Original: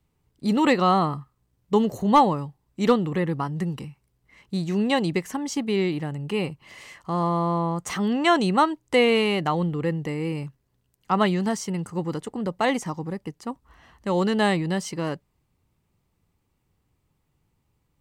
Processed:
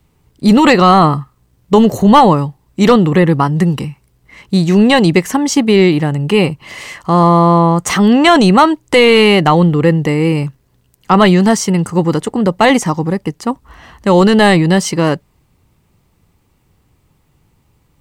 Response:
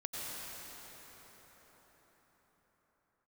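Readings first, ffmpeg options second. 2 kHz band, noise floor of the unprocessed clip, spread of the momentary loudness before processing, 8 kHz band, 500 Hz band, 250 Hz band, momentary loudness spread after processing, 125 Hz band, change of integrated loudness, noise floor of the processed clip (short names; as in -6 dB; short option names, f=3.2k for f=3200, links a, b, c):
+13.0 dB, -72 dBFS, 14 LU, +14.5 dB, +13.0 dB, +14.0 dB, 11 LU, +15.0 dB, +13.0 dB, -57 dBFS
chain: -af "apsyclip=17dB,volume=-2dB"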